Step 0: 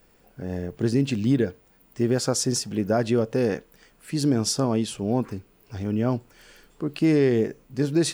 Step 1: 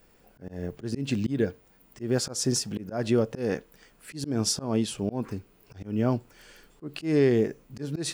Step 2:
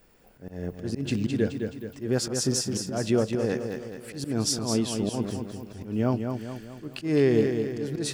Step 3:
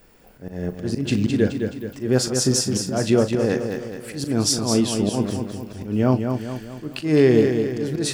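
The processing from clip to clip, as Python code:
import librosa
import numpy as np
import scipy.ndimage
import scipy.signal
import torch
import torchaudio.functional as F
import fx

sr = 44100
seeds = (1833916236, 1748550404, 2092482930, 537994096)

y1 = fx.auto_swell(x, sr, attack_ms=168.0)
y1 = F.gain(torch.from_numpy(y1), -1.0).numpy()
y2 = fx.echo_feedback(y1, sr, ms=212, feedback_pct=49, wet_db=-6.0)
y3 = fx.doubler(y2, sr, ms=39.0, db=-12.0)
y3 = F.gain(torch.from_numpy(y3), 6.0).numpy()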